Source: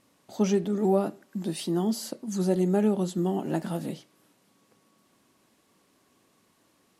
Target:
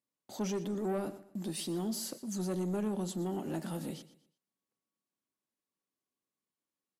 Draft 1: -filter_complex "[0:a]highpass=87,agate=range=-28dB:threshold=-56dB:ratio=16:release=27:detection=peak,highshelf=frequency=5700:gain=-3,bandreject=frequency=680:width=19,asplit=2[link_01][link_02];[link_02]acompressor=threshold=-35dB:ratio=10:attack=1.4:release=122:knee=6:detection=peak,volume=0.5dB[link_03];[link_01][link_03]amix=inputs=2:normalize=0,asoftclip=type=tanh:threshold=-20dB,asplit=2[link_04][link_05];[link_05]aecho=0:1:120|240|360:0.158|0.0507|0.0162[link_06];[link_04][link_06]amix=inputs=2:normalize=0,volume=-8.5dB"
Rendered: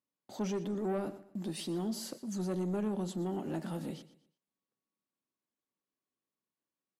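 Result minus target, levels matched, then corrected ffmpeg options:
8,000 Hz band −4.5 dB
-filter_complex "[0:a]highpass=87,agate=range=-28dB:threshold=-56dB:ratio=16:release=27:detection=peak,highshelf=frequency=5700:gain=6,bandreject=frequency=680:width=19,asplit=2[link_01][link_02];[link_02]acompressor=threshold=-35dB:ratio=10:attack=1.4:release=122:knee=6:detection=peak,volume=0.5dB[link_03];[link_01][link_03]amix=inputs=2:normalize=0,asoftclip=type=tanh:threshold=-20dB,asplit=2[link_04][link_05];[link_05]aecho=0:1:120|240|360:0.158|0.0507|0.0162[link_06];[link_04][link_06]amix=inputs=2:normalize=0,volume=-8.5dB"

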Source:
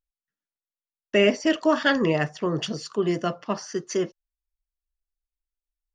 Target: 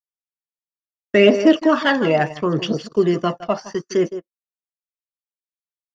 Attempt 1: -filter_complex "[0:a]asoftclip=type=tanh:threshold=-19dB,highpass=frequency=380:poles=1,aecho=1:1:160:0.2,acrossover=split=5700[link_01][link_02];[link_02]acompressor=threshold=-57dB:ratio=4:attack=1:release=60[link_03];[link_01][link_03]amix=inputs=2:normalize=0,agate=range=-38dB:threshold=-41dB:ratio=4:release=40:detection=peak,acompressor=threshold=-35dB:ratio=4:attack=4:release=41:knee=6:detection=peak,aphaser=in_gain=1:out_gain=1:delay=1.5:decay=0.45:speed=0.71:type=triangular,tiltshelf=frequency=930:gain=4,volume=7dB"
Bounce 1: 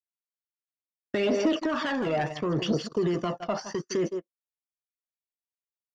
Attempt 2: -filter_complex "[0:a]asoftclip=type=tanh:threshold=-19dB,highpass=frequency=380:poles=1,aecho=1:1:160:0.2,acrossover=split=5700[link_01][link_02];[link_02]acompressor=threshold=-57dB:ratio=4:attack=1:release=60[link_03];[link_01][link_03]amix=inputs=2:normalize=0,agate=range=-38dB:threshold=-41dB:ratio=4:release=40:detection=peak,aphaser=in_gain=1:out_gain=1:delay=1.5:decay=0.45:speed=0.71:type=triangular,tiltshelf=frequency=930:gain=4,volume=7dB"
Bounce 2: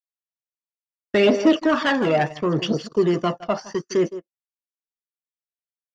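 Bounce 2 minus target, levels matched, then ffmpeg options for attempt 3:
soft clipping: distortion +11 dB
-filter_complex "[0:a]asoftclip=type=tanh:threshold=-9.5dB,highpass=frequency=380:poles=1,aecho=1:1:160:0.2,acrossover=split=5700[link_01][link_02];[link_02]acompressor=threshold=-57dB:ratio=4:attack=1:release=60[link_03];[link_01][link_03]amix=inputs=2:normalize=0,agate=range=-38dB:threshold=-41dB:ratio=4:release=40:detection=peak,aphaser=in_gain=1:out_gain=1:delay=1.5:decay=0.45:speed=0.71:type=triangular,tiltshelf=frequency=930:gain=4,volume=7dB"

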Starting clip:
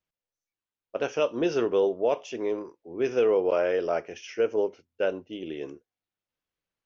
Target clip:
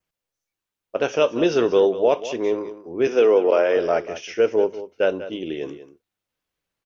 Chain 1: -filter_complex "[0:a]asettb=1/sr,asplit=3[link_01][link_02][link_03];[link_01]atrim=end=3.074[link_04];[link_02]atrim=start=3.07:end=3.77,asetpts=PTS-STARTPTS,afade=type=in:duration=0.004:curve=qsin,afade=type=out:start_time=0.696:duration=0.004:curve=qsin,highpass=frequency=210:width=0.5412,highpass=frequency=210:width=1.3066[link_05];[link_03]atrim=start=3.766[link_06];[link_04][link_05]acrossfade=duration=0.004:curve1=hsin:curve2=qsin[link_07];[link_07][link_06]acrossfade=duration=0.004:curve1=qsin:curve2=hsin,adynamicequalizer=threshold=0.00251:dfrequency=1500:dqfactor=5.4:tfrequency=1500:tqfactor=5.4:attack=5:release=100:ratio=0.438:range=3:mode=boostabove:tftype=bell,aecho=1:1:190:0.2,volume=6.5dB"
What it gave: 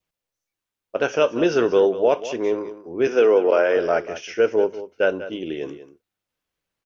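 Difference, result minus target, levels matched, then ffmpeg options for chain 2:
2,000 Hz band +3.0 dB
-filter_complex "[0:a]asettb=1/sr,asplit=3[link_01][link_02][link_03];[link_01]atrim=end=3.074[link_04];[link_02]atrim=start=3.07:end=3.77,asetpts=PTS-STARTPTS,afade=type=in:duration=0.004:curve=qsin,afade=type=out:start_time=0.696:duration=0.004:curve=qsin,highpass=frequency=210:width=0.5412,highpass=frequency=210:width=1.3066[link_05];[link_03]atrim=start=3.766[link_06];[link_04][link_05]acrossfade=duration=0.004:curve1=hsin:curve2=qsin[link_07];[link_07][link_06]acrossfade=duration=0.004:curve1=qsin:curve2=hsin,adynamicequalizer=threshold=0.00251:dfrequency=3700:dqfactor=5.4:tfrequency=3700:tqfactor=5.4:attack=5:release=100:ratio=0.438:range=3:mode=boostabove:tftype=bell,aecho=1:1:190:0.2,volume=6.5dB"

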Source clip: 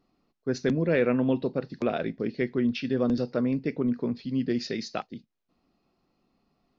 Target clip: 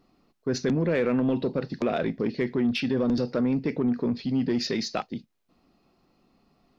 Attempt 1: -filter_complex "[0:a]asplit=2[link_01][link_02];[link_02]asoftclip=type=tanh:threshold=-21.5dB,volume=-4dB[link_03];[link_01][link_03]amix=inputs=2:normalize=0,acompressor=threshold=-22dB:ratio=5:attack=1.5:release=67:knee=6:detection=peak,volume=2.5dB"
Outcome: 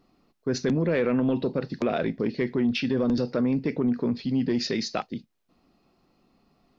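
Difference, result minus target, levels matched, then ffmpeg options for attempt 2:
soft clipping: distortion −7 dB
-filter_complex "[0:a]asplit=2[link_01][link_02];[link_02]asoftclip=type=tanh:threshold=-29.5dB,volume=-4dB[link_03];[link_01][link_03]amix=inputs=2:normalize=0,acompressor=threshold=-22dB:ratio=5:attack=1.5:release=67:knee=6:detection=peak,volume=2.5dB"

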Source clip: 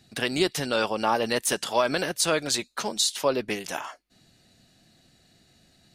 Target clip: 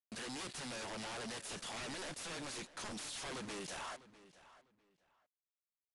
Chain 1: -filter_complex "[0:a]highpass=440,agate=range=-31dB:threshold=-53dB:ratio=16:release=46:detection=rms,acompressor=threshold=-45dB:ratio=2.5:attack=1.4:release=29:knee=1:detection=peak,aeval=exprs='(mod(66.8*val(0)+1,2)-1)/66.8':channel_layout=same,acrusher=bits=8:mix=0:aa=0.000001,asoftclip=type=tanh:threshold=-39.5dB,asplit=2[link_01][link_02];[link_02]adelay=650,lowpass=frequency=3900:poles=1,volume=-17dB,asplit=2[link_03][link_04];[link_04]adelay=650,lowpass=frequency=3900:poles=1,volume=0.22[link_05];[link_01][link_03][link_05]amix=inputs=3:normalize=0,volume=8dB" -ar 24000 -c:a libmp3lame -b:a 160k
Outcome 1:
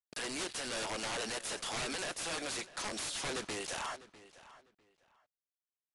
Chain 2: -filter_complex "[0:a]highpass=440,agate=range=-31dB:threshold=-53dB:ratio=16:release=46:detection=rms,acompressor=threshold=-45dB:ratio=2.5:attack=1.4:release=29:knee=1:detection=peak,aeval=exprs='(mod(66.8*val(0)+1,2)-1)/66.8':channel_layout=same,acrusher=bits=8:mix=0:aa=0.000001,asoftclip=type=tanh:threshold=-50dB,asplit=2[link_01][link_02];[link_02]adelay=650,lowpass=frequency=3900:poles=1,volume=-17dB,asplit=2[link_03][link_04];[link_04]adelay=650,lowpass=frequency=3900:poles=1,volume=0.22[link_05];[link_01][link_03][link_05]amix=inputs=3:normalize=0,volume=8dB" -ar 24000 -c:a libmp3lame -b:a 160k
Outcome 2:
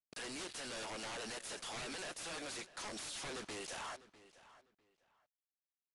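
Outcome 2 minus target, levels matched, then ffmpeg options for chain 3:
125 Hz band −4.5 dB
-filter_complex "[0:a]highpass=130,agate=range=-31dB:threshold=-53dB:ratio=16:release=46:detection=rms,acompressor=threshold=-45dB:ratio=2.5:attack=1.4:release=29:knee=1:detection=peak,aeval=exprs='(mod(66.8*val(0)+1,2)-1)/66.8':channel_layout=same,acrusher=bits=8:mix=0:aa=0.000001,asoftclip=type=tanh:threshold=-50dB,asplit=2[link_01][link_02];[link_02]adelay=650,lowpass=frequency=3900:poles=1,volume=-17dB,asplit=2[link_03][link_04];[link_04]adelay=650,lowpass=frequency=3900:poles=1,volume=0.22[link_05];[link_01][link_03][link_05]amix=inputs=3:normalize=0,volume=8dB" -ar 24000 -c:a libmp3lame -b:a 160k

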